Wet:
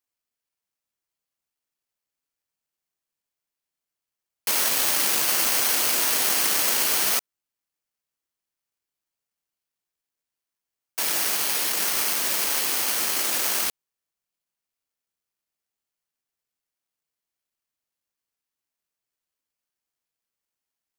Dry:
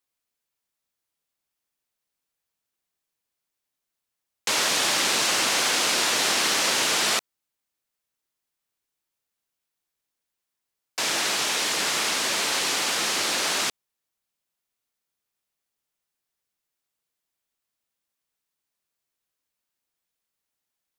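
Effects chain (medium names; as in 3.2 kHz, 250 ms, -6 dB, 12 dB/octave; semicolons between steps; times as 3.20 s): careless resampling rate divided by 6×, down filtered, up zero stuff; trim -4 dB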